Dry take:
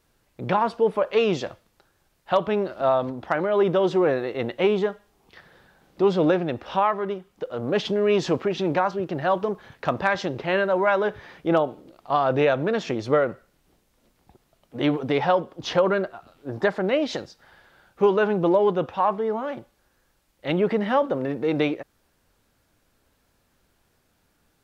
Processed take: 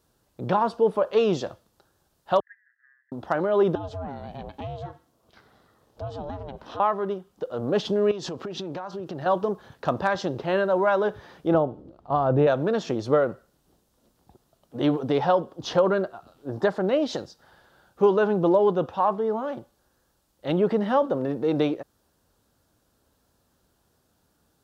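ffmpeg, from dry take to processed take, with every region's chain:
ffmpeg -i in.wav -filter_complex "[0:a]asettb=1/sr,asplit=3[link_01][link_02][link_03];[link_01]atrim=end=2.404[link_04];[link_02]atrim=start=2.4:end=3.12,asetpts=PTS-STARTPTS,afade=type=in:duration=0.004:curve=qsin,afade=type=out:start_time=0.716:duration=0.004:curve=qsin,afreqshift=-89,asuperpass=centerf=1800:order=8:qfactor=5.1[link_05];[link_03]atrim=start=3.116[link_06];[link_04][link_05]acrossfade=duration=0.004:curve1=hsin:curve2=qsin[link_07];[link_07][link_06]acrossfade=duration=0.004:curve1=qsin:curve2=hsin,asettb=1/sr,asplit=3[link_08][link_09][link_10];[link_08]atrim=end=3.754[link_11];[link_09]atrim=start=3.75:end=6.8,asetpts=PTS-STARTPTS,afade=type=in:duration=0.004:curve=qsin,afade=type=out:start_time=3.046:duration=0.004:curve=qsin,acompressor=threshold=-31dB:ratio=3:attack=3.2:release=140:knee=1:detection=peak,aeval=exprs='val(0)*sin(2*PI*280*n/s)':channel_layout=same[link_12];[link_10]atrim=start=6.796[link_13];[link_11][link_12]acrossfade=duration=0.004:curve1=hsin:curve2=qsin[link_14];[link_14][link_13]acrossfade=duration=0.004:curve1=qsin:curve2=hsin,asettb=1/sr,asplit=3[link_15][link_16][link_17];[link_15]atrim=end=8.114[link_18];[link_16]atrim=start=8.11:end=9.26,asetpts=PTS-STARTPTS,afade=type=in:duration=0.004:curve=qsin,afade=type=out:start_time=1.146:duration=0.004:curve=qsin,acompressor=threshold=-29dB:ratio=12:attack=3.2:release=140:knee=1:detection=peak,equalizer=frequency=4600:width_type=o:width=2.2:gain=3.5[link_19];[link_17]atrim=start=9.256[link_20];[link_18][link_19]acrossfade=duration=0.004:curve1=hsin:curve2=qsin[link_21];[link_21][link_20]acrossfade=duration=0.004:curve1=qsin:curve2=hsin,asettb=1/sr,asplit=3[link_22][link_23][link_24];[link_22]atrim=end=11.544[link_25];[link_23]atrim=start=11.54:end=12.47,asetpts=PTS-STARTPTS,afade=type=in:duration=0.004:curve=qsin,afade=type=out:start_time=0.926:duration=0.004:curve=qsin,lowpass=frequency=1200:poles=1,equalizer=frequency=64:width=0.63:gain=12.5[link_26];[link_24]atrim=start=12.466[link_27];[link_25][link_26]acrossfade=duration=0.004:curve1=hsin:curve2=qsin[link_28];[link_28][link_27]acrossfade=duration=0.004:curve1=qsin:curve2=hsin,highpass=44,equalizer=frequency=2200:width=1.9:gain=-10.5" out.wav

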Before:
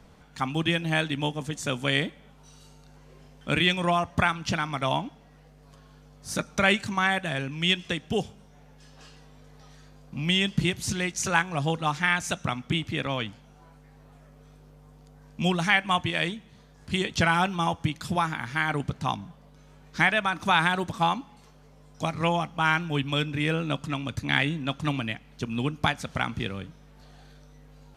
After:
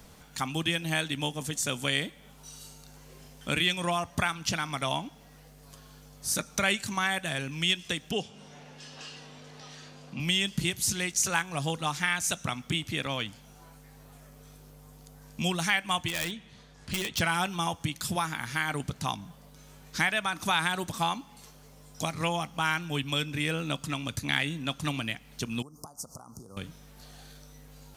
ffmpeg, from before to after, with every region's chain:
ffmpeg -i in.wav -filter_complex "[0:a]asettb=1/sr,asplit=3[link_01][link_02][link_03];[link_01]atrim=end=8.114[link_04];[link_02]atrim=start=8.11:end=10.2,asetpts=PTS-STARTPTS,afade=type=in:duration=0.004:curve=qsin,afade=type=out:start_time=2.086:duration=0.004:curve=qsin,equalizer=frequency=2800:width=6.2:gain=5,acompressor=mode=upward:threshold=-38dB:ratio=2.5:attack=3.2:release=140:knee=2.83:detection=peak,highpass=150,lowpass=5200[link_05];[link_03]atrim=start=10.196[link_06];[link_04][link_05]acrossfade=duration=0.004:curve1=hsin:curve2=qsin[link_07];[link_07][link_06]acrossfade=duration=0.004:curve1=qsin:curve2=hsin,asettb=1/sr,asplit=3[link_08][link_09][link_10];[link_08]atrim=end=16.084[link_11];[link_09]atrim=start=16.08:end=17.2,asetpts=PTS-STARTPTS,afade=type=in:duration=0.004:curve=qsin,afade=type=out:start_time=1.116:duration=0.004:curve=qsin,lowpass=2900,aemphasis=mode=production:type=75fm,asoftclip=type=hard:threshold=-26.5dB[link_12];[link_10]atrim=start=17.196[link_13];[link_11][link_12]acrossfade=duration=0.004:curve1=hsin:curve2=qsin[link_14];[link_14][link_13]acrossfade=duration=0.004:curve1=qsin:curve2=hsin,asettb=1/sr,asplit=3[link_15][link_16][link_17];[link_15]atrim=end=25.624[link_18];[link_16]atrim=start=25.62:end=26.57,asetpts=PTS-STARTPTS,afade=type=in:duration=0.004:curve=qsin,afade=type=out:start_time=0.946:duration=0.004:curve=qsin,lowshelf=frequency=330:gain=-6.5,acompressor=threshold=-41dB:ratio=8:attack=3.2:release=140:knee=1:detection=peak,asuperstop=centerf=2500:order=12:qfactor=0.66[link_19];[link_17]atrim=start=26.566[link_20];[link_18][link_19]acrossfade=duration=0.004:curve1=hsin:curve2=qsin[link_21];[link_21][link_20]acrossfade=duration=0.004:curve1=qsin:curve2=hsin,aemphasis=mode=production:type=75kf,acompressor=threshold=-35dB:ratio=1.5" out.wav

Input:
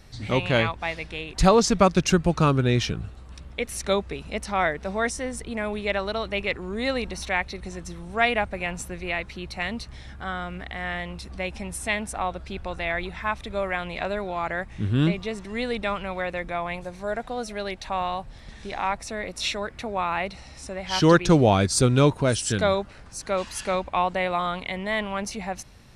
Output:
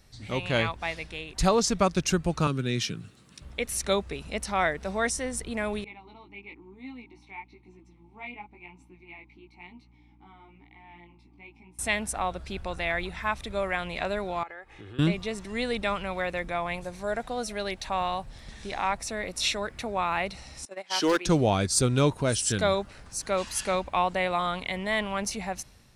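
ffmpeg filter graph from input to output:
ffmpeg -i in.wav -filter_complex "[0:a]asettb=1/sr,asplit=3[link_01][link_02][link_03];[link_01]atrim=end=2.474[link_04];[link_02]atrim=start=2.47:end=3.42,asetpts=PTS-STARTPTS,afade=type=in:duration=0.004:curve=qsin,afade=type=out:start_time=0.946:duration=0.004:curve=qsin,highpass=frequency=130:width=0.5412,highpass=frequency=130:width=1.3066,equalizer=frequency=750:width=0.96:gain=-10.5[link_05];[link_03]atrim=start=3.416[link_06];[link_04][link_05]acrossfade=duration=0.004:curve1=hsin:curve2=qsin[link_07];[link_07][link_06]acrossfade=duration=0.004:curve1=qsin:curve2=hsin,asettb=1/sr,asplit=3[link_08][link_09][link_10];[link_08]atrim=end=5.844[link_11];[link_09]atrim=start=5.84:end=11.79,asetpts=PTS-STARTPTS,afade=type=in:duration=0.004:curve=qsin,afade=type=out:start_time=5.946:duration=0.004:curve=qsin,asplit=3[link_12][link_13][link_14];[link_12]bandpass=frequency=300:width_type=q:width=8,volume=0dB[link_15];[link_13]bandpass=frequency=870:width_type=q:width=8,volume=-6dB[link_16];[link_14]bandpass=frequency=2240:width_type=q:width=8,volume=-9dB[link_17];[link_15][link_16][link_17]amix=inputs=3:normalize=0,flanger=delay=15.5:depth=5:speed=1,aeval=exprs='val(0)+0.00158*(sin(2*PI*60*n/s)+sin(2*PI*2*60*n/s)/2+sin(2*PI*3*60*n/s)/3+sin(2*PI*4*60*n/s)/4+sin(2*PI*5*60*n/s)/5)':channel_layout=same[link_18];[link_10]atrim=start=11.786[link_19];[link_11][link_18]acrossfade=duration=0.004:curve1=hsin:curve2=qsin[link_20];[link_20][link_19]acrossfade=duration=0.004:curve1=qsin:curve2=hsin,asettb=1/sr,asplit=3[link_21][link_22][link_23];[link_21]atrim=end=14.434[link_24];[link_22]atrim=start=14.43:end=14.99,asetpts=PTS-STARTPTS,afade=type=in:duration=0.004:curve=qsin,afade=type=out:start_time=0.556:duration=0.004:curve=qsin,acrossover=split=280 3500:gain=0.178 1 0.224[link_25][link_26][link_27];[link_25][link_26][link_27]amix=inputs=3:normalize=0,aecho=1:1:2.4:0.55,atrim=end_sample=24696,acompressor=threshold=-39dB:ratio=4:attack=3.2:release=140:knee=1:detection=peak[link_28];[link_23]atrim=start=14.986[link_29];[link_24][link_28]acrossfade=duration=0.004:curve1=hsin:curve2=qsin[link_30];[link_30][link_29]acrossfade=duration=0.004:curve1=qsin:curve2=hsin,asettb=1/sr,asplit=3[link_31][link_32][link_33];[link_31]atrim=end=20.654[link_34];[link_32]atrim=start=20.65:end=21.26,asetpts=PTS-STARTPTS,afade=type=in:duration=0.004:curve=qsin,afade=type=out:start_time=0.606:duration=0.004:curve=qsin,highpass=frequency=260:width=0.5412,highpass=frequency=260:width=1.3066,agate=range=-16dB:threshold=-34dB:ratio=16:release=100:detection=peak,asoftclip=type=hard:threshold=-13dB[link_35];[link_33]atrim=start=21.256[link_36];[link_34][link_35]acrossfade=duration=0.004:curve1=hsin:curve2=qsin[link_37];[link_37][link_36]acrossfade=duration=0.004:curve1=qsin:curve2=hsin,highshelf=frequency=5500:gain=7.5,dynaudnorm=framelen=140:gausssize=7:maxgain=7.5dB,volume=-9dB" out.wav

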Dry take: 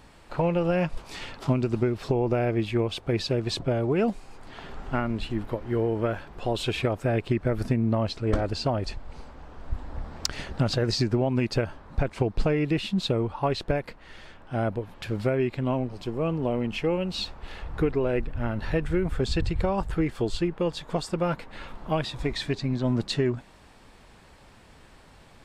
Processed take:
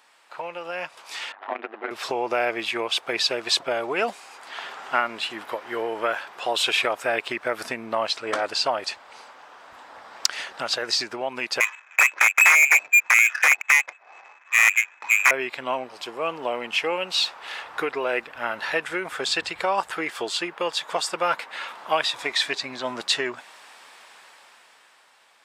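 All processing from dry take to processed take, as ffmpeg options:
ffmpeg -i in.wav -filter_complex "[0:a]asettb=1/sr,asplit=3[link_01][link_02][link_03];[link_01]atrim=end=1.324[link_04];[link_02]atrim=start=1.32:end=1.91,asetpts=PTS-STARTPTS,afade=type=in:duration=0.004:curve=qsin,afade=type=out:start_time=0.586:duration=0.004:curve=qsin,adynamicsmooth=sensitivity=3.5:basefreq=1100,tremolo=f=100:d=0.947,highpass=frequency=260:width=0.5412,highpass=frequency=260:width=1.3066,equalizer=frequency=470:width_type=q:width=4:gain=-3,equalizer=frequency=720:width_type=q:width=4:gain=7,equalizer=frequency=1800:width_type=q:width=4:gain=7,lowpass=frequency=3600:width=0.5412,lowpass=frequency=3600:width=1.3066[link_05];[link_03]atrim=start=1.906[link_06];[link_04][link_05]acrossfade=duration=0.004:curve1=hsin:curve2=qsin[link_07];[link_07][link_06]acrossfade=duration=0.004:curve1=qsin:curve2=hsin,asettb=1/sr,asplit=3[link_08][link_09][link_10];[link_08]atrim=end=11.604[link_11];[link_09]atrim=start=11.6:end=15.31,asetpts=PTS-STARTPTS,afade=type=in:duration=0.004:curve=qsin,afade=type=out:start_time=3.706:duration=0.004:curve=qsin,aeval=exprs='(mod(7.5*val(0)+1,2)-1)/7.5':channel_layout=same,lowpass=frequency=2200:width_type=q:width=0.5098,lowpass=frequency=2200:width_type=q:width=0.6013,lowpass=frequency=2200:width_type=q:width=0.9,lowpass=frequency=2200:width_type=q:width=2.563,afreqshift=-2600,adynamicsmooth=sensitivity=5.5:basefreq=590[link_12];[link_10]atrim=start=15.306[link_13];[link_11][link_12]acrossfade=duration=0.004:curve1=hsin:curve2=qsin[link_14];[link_14][link_13]acrossfade=duration=0.004:curve1=qsin:curve2=hsin,highpass=920,bandreject=frequency=4300:width=26,dynaudnorm=framelen=120:gausssize=21:maxgain=11dB" out.wav

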